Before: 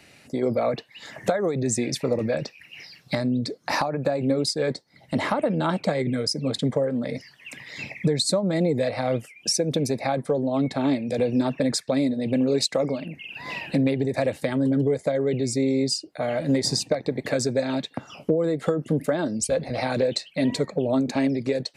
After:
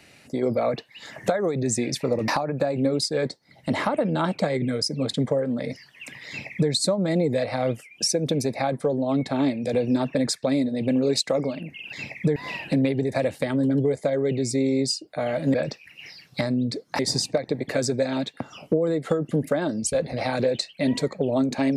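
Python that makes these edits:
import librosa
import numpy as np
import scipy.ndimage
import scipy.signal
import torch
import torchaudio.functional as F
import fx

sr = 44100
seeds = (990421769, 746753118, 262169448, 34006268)

y = fx.edit(x, sr, fx.move(start_s=2.28, length_s=1.45, to_s=16.56),
    fx.duplicate(start_s=7.73, length_s=0.43, to_s=13.38), tone=tone)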